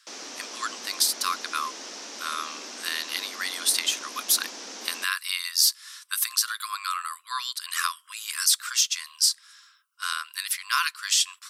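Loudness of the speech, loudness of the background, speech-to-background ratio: −26.0 LKFS, −37.5 LKFS, 11.5 dB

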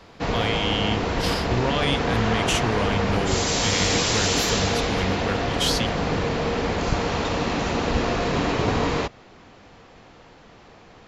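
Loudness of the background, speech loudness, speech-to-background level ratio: −23.5 LKFS, −27.0 LKFS, −3.5 dB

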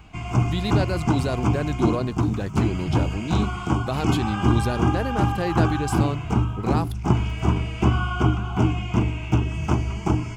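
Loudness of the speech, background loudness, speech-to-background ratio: −28.5 LKFS, −24.0 LKFS, −4.5 dB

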